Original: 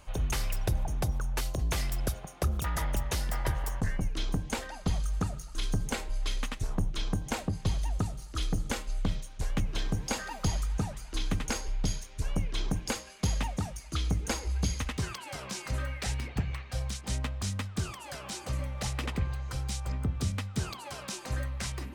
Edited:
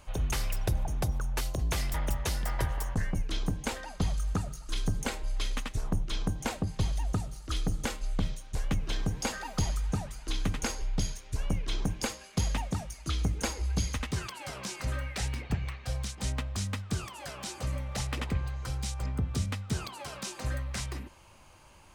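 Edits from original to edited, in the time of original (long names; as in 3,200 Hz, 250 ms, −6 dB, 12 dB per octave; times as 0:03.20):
0:01.94–0:02.80: remove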